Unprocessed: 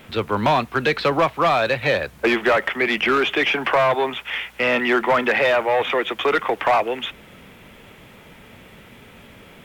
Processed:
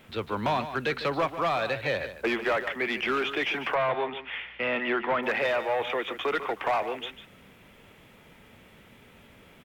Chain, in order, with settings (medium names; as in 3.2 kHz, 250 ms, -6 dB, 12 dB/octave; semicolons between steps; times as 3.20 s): 3.74–5.23 s: low-pass 3.7 kHz 24 dB/octave; on a send: delay 148 ms -11.5 dB; on the sum: trim -9 dB